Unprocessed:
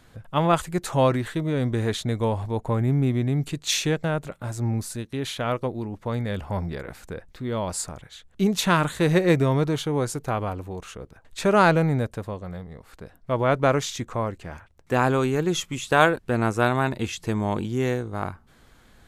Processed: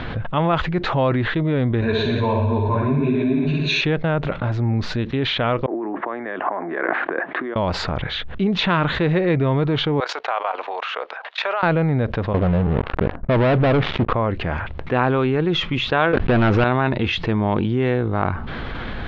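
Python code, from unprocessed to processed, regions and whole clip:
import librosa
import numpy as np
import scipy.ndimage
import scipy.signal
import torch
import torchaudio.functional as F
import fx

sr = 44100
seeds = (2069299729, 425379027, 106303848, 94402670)

y = fx.chain(x, sr, fx.ripple_eq(per_octave=1.5, db=14),
    fx.room_flutter(wall_m=10.2, rt60_s=1.1),
    fx.ensemble(), at=(1.81, 3.81))
y = fx.chain(y, sr, fx.over_compress(threshold_db=-40.0, ratio=-1.0),
    fx.cabinet(low_hz=300.0, low_slope=24, high_hz=2500.0, hz=(330.0, 480.0, 690.0, 1100.0, 1700.0, 2500.0), db=(6, -5, 6, 6, 7, -3)),
    fx.band_widen(depth_pct=70), at=(5.66, 7.56))
y = fx.chain(y, sr, fx.highpass(hz=650.0, slope=24),
    fx.level_steps(step_db=17), at=(10.0, 11.63))
y = fx.chain(y, sr, fx.lowpass(hz=1100.0, slope=12),
    fx.leveller(passes=5), at=(12.34, 14.13))
y = fx.chain(y, sr, fx.high_shelf(hz=7700.0, db=-11.5),
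    fx.leveller(passes=5),
    fx.pre_swell(db_per_s=87.0), at=(16.13, 16.64))
y = scipy.signal.sosfilt(scipy.signal.cheby2(4, 50, 8200.0, 'lowpass', fs=sr, output='sos'), y)
y = fx.env_flatten(y, sr, amount_pct=70)
y = y * librosa.db_to_amplitude(-4.5)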